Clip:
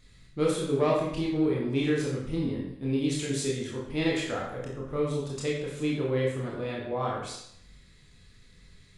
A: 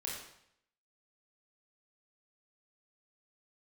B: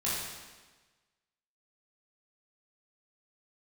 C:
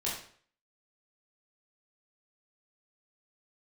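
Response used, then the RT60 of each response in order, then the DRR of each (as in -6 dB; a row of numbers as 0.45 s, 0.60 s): A; 0.70 s, 1.3 s, 0.50 s; -4.0 dB, -9.0 dB, -6.5 dB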